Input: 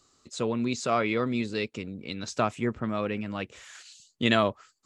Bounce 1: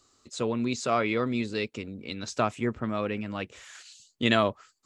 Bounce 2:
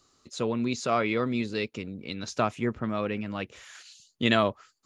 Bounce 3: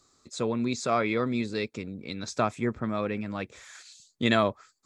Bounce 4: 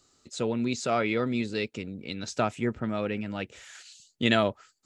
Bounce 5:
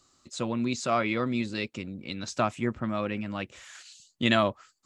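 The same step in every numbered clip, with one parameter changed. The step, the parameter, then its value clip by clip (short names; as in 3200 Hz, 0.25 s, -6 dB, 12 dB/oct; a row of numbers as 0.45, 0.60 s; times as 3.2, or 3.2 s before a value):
notch, frequency: 170, 7900, 2900, 1100, 440 Hz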